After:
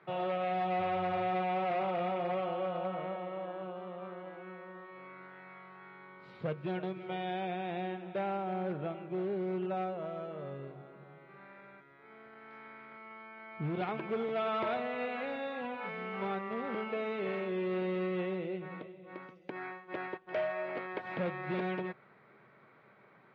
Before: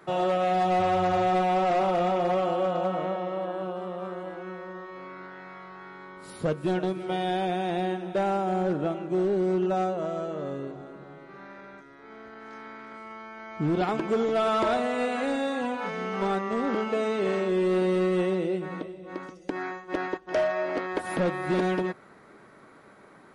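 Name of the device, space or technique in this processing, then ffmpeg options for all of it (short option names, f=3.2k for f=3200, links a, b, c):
guitar cabinet: -af "highpass=110,equalizer=f=130:t=q:w=4:g=8,equalizer=f=290:t=q:w=4:g=-8,equalizer=f=2.3k:t=q:w=4:g=6,lowpass=f=3.7k:w=0.5412,lowpass=f=3.7k:w=1.3066,volume=-8.5dB"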